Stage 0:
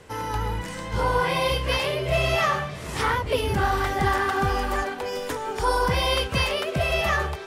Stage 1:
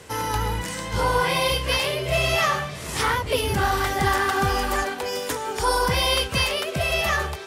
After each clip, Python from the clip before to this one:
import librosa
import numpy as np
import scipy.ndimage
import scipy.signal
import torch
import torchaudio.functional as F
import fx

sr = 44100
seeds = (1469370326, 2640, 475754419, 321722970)

y = scipy.signal.sosfilt(scipy.signal.butter(2, 41.0, 'highpass', fs=sr, output='sos'), x)
y = fx.high_shelf(y, sr, hz=3500.0, db=8.5)
y = fx.rider(y, sr, range_db=3, speed_s=2.0)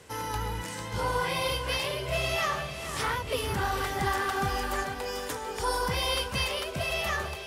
y = fx.echo_feedback(x, sr, ms=446, feedback_pct=47, wet_db=-11.0)
y = y * librosa.db_to_amplitude(-7.5)